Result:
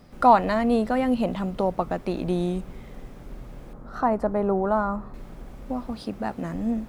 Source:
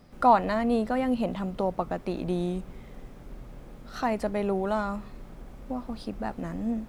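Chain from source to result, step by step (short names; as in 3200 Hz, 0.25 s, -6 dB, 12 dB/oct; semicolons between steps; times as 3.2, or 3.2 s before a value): 3.73–5.14 resonant high shelf 1800 Hz -12.5 dB, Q 1.5; 5.91–6.54 HPF 66 Hz; gain +3.5 dB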